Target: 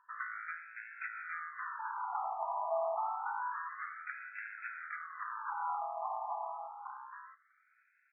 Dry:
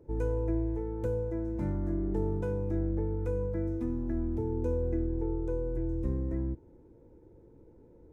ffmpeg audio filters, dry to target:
-filter_complex "[0:a]tiltshelf=f=970:g=-4,bandreject=f=99.25:t=h:w=4,bandreject=f=198.5:t=h:w=4,bandreject=f=297.75:t=h:w=4,bandreject=f=397:t=h:w=4,bandreject=f=496.25:t=h:w=4,bandreject=f=595.5:t=h:w=4,bandreject=f=694.75:t=h:w=4,bandreject=f=794:t=h:w=4,acrossover=split=320|840[a][b][c];[a]acompressor=threshold=-49dB:ratio=4[d];[b]acompressor=threshold=-40dB:ratio=4[e];[c]acompressor=threshold=-57dB:ratio=4[f];[d][e][f]amix=inputs=3:normalize=0,aeval=exprs='0.0335*(cos(1*acos(clip(val(0)/0.0335,-1,1)))-cos(1*PI/2))+0.00596*(cos(6*acos(clip(val(0)/0.0335,-1,1)))-cos(6*PI/2))':c=same,asplit=2[g][h];[h]aecho=0:1:811:0.631[i];[g][i]amix=inputs=2:normalize=0,afftfilt=real='re*between(b*sr/1024,870*pow(1900/870,0.5+0.5*sin(2*PI*0.28*pts/sr))/1.41,870*pow(1900/870,0.5+0.5*sin(2*PI*0.28*pts/sr))*1.41)':imag='im*between(b*sr/1024,870*pow(1900/870,0.5+0.5*sin(2*PI*0.28*pts/sr))/1.41,870*pow(1900/870,0.5+0.5*sin(2*PI*0.28*pts/sr))*1.41)':win_size=1024:overlap=0.75,volume=14dB"

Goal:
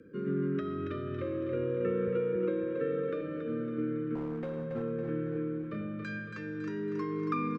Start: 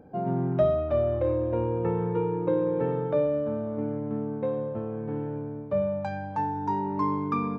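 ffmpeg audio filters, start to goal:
-filter_complex "[0:a]lowshelf=f=280:g=-12,acompressor=threshold=-29dB:ratio=6,asuperstop=centerf=760:order=8:qfactor=1,asettb=1/sr,asplit=3[a][b][c];[a]atrim=end=2.074[d];[b]atrim=start=2.07:end=3.21,asetpts=PTS-STARTPTS,afade=t=in:d=0.004:c=qsin,afade=t=out:st=1.136:d=0.004:c=qsin,acrossover=split=190|3000[e][f][g];[e]acompressor=threshold=-51dB:ratio=6[h];[h][f][g]amix=inputs=3:normalize=0[i];[c]atrim=start=3.206[j];[d][i]acrossfade=d=0.004:c1=hsin:c2=qsin[k];[k][j]acrossfade=d=0.004:c1=qsin:c2=hsin,asettb=1/sr,asplit=3[l][m][n];[l]atrim=end=5.324[o];[m]atrim=start=5.32:end=5.81,asetpts=PTS-STARTPTS,afade=t=in:d=0.004:c=qsin,afade=t=out:st=0.486:d=0.004:c=qsin,asplit=2[p][q];[q]adelay=30,volume=-4.5dB[r];[p][r]amix=inputs=2:normalize=0,atrim=end_sample=21609[s];[n]atrim=start=5.806[t];[o][s]acrossfade=d=0.004:c1=hsin:c2=qsin[u];[u][t]acrossfade=d=0.004:c1=qsin:c2=hsin,afreqshift=15,asettb=1/sr,asplit=3[v][w][x];[v]atrim=end=4.154[y];[w]atrim=start=4.15:end=4.82,asetpts=PTS-STARTPTS,afade=t=in:d=0.004:c=qsin,afade=t=out:st=0.666:d=0.004:c=qsin,asoftclip=type=hard:threshold=-36dB[z];[x]atrim=start=4.816[aa];[y][z]acrossfade=d=0.004:c1=hsin:c2=qsin[ab];[ab][aa]acrossfade=d=0.004:c1=qsin:c2=hsin,highshelf=f=3.4k:g=-7.5,asplit=2[ac][ad];[ad]aecho=0:1:278|556|834|1112|1390|1668:0.501|0.261|0.136|0.0705|0.0366|0.0191[ae];[ac][ae]amix=inputs=2:normalize=0,volume=5dB"

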